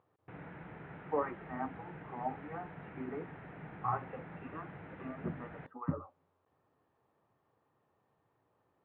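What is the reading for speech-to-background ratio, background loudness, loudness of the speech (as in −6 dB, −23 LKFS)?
7.5 dB, −49.5 LKFS, −42.0 LKFS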